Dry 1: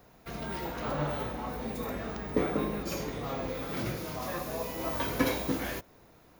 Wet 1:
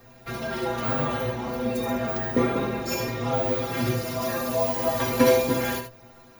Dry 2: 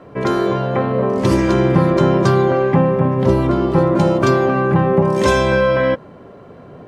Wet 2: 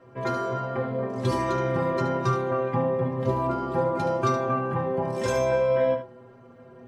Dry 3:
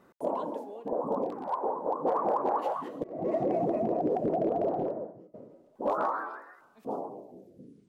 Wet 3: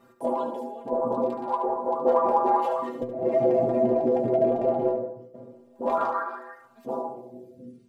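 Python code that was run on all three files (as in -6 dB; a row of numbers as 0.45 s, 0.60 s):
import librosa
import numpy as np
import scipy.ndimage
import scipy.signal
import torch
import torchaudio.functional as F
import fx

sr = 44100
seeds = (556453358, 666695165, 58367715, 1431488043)

p1 = fx.stiff_resonator(x, sr, f0_hz=120.0, decay_s=0.28, stiffness=0.008)
p2 = p1 + fx.echo_single(p1, sr, ms=73, db=-9.0, dry=0)
y = p2 * 10.0 ** (-26 / 20.0) / np.sqrt(np.mean(np.square(p2)))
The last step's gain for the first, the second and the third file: +17.5 dB, -0.5 dB, +14.5 dB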